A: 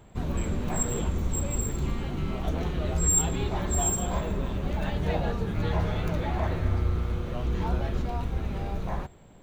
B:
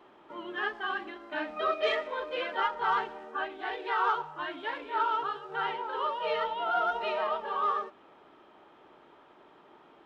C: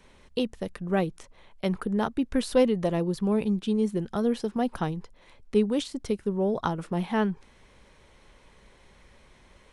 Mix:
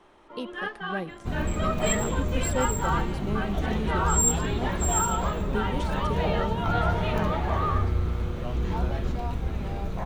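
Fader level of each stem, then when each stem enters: +0.5 dB, -0.5 dB, -8.0 dB; 1.10 s, 0.00 s, 0.00 s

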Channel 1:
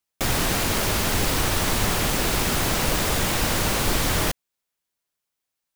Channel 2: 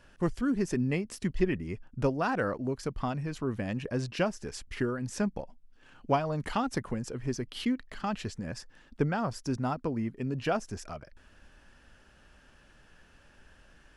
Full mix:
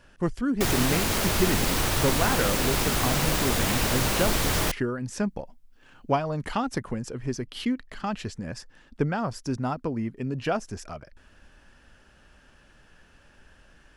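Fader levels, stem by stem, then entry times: -2.5 dB, +2.5 dB; 0.40 s, 0.00 s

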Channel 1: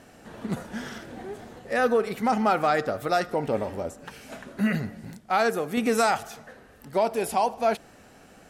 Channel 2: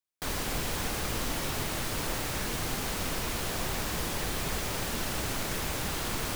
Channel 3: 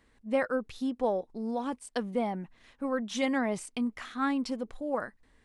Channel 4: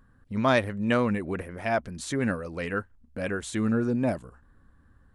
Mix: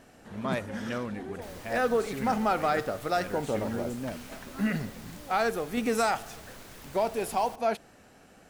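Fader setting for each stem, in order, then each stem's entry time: -4.0 dB, -15.5 dB, -17.0 dB, -10.0 dB; 0.00 s, 1.20 s, 0.35 s, 0.00 s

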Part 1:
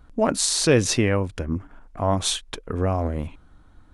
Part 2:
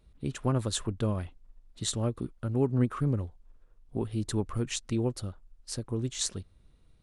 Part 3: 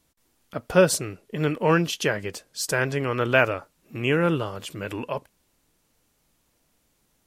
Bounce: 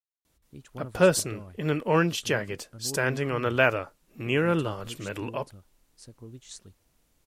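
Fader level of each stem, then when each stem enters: mute, -13.0 dB, -2.5 dB; mute, 0.30 s, 0.25 s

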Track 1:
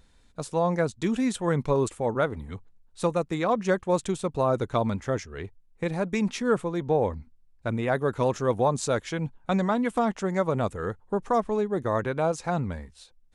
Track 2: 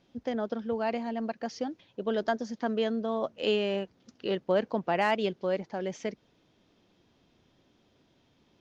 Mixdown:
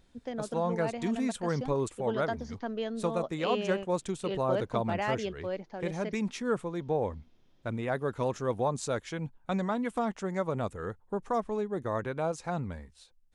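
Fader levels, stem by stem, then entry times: -6.0 dB, -5.5 dB; 0.00 s, 0.00 s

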